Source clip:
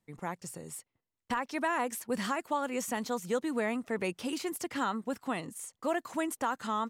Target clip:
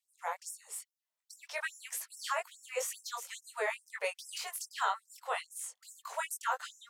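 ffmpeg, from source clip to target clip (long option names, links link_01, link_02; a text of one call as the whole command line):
ffmpeg -i in.wav -af "flanger=delay=19:depth=3.1:speed=2,afftfilt=real='re*gte(b*sr/1024,400*pow(5300/400,0.5+0.5*sin(2*PI*2.4*pts/sr)))':imag='im*gte(b*sr/1024,400*pow(5300/400,0.5+0.5*sin(2*PI*2.4*pts/sr)))':win_size=1024:overlap=0.75,volume=4.5dB" out.wav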